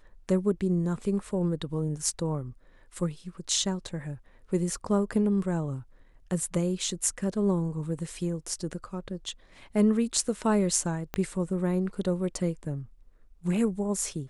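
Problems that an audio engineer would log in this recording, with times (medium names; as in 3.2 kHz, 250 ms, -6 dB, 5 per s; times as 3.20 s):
11.14 s: pop -16 dBFS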